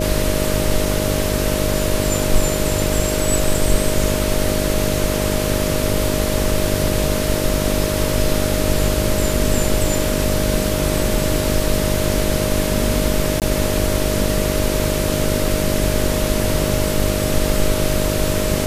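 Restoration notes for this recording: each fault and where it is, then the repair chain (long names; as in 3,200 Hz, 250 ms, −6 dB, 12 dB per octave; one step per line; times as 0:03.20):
mains buzz 50 Hz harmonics 11 −22 dBFS
whistle 620 Hz −24 dBFS
0:13.40–0:13.42: drop-out 18 ms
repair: notch filter 620 Hz, Q 30
hum removal 50 Hz, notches 11
repair the gap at 0:13.40, 18 ms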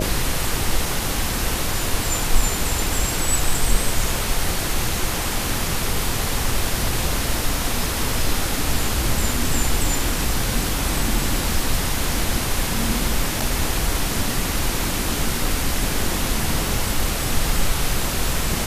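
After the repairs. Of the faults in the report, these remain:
none of them is left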